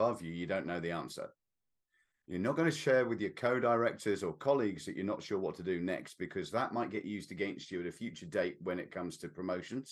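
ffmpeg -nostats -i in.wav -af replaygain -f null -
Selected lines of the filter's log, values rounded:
track_gain = +14.8 dB
track_peak = 0.096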